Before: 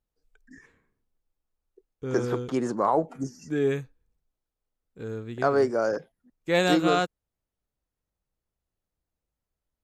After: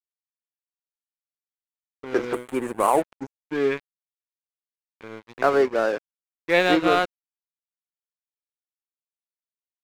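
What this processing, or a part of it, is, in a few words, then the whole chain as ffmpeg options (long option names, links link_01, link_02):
pocket radio on a weak battery: -filter_complex "[0:a]highpass=270,lowpass=3500,aeval=exprs='sgn(val(0))*max(abs(val(0))-0.015,0)':channel_layout=same,equalizer=frequency=2200:width_type=o:width=0.59:gain=4.5,asettb=1/sr,asplit=3[link_01][link_02][link_03];[link_01]atrim=end=2.334[link_04];[link_02]atrim=start=2.33:end=3.02,asetpts=PTS-STARTPTS,afade=type=in:duration=0.004:curve=qsin,afade=type=out:start_time=0.686:duration=0.004:curve=qsin,highshelf=frequency=7000:width_type=q:width=3:gain=11[link_05];[link_03]atrim=start=3.016[link_06];[link_04][link_05]acrossfade=duration=0.004:curve1=hsin:curve2=qsin[link_07];[link_07][link_06]acrossfade=duration=0.004:curve1=qsin:curve2=hsin,volume=5dB"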